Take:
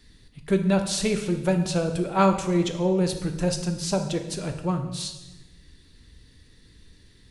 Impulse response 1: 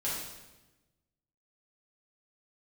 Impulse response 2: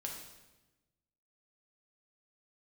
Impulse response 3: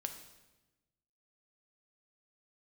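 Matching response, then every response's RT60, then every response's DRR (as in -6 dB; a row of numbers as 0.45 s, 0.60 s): 3; 1.1 s, 1.1 s, 1.1 s; -9.0 dB, -1.0 dB, 5.5 dB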